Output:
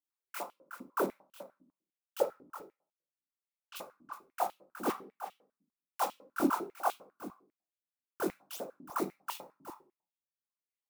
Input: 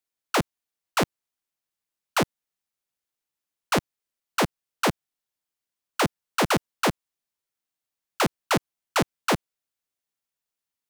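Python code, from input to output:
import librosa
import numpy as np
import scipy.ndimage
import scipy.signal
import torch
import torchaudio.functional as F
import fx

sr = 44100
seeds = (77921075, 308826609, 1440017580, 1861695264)

p1 = fx.block_float(x, sr, bits=3, at=(4.86, 6.02), fade=0.02)
p2 = fx.dereverb_blind(p1, sr, rt60_s=1.5)
p3 = np.abs(p2)
p4 = fx.high_shelf(p3, sr, hz=12000.0, db=6.5)
p5 = fx.chorus_voices(p4, sr, voices=4, hz=1.3, base_ms=23, depth_ms=3.0, mix_pct=60)
p6 = fx.air_absorb(p5, sr, metres=130.0, at=(2.22, 3.75), fade=0.02)
p7 = p6 + fx.echo_single(p6, sr, ms=367, db=-12.5, dry=0)
p8 = fx.room_shoebox(p7, sr, seeds[0], volume_m3=310.0, walls='furnished', distance_m=0.77)
p9 = fx.filter_held_highpass(p8, sr, hz=10.0, low_hz=270.0, high_hz=3000.0)
y = F.gain(torch.from_numpy(p9), -5.0).numpy()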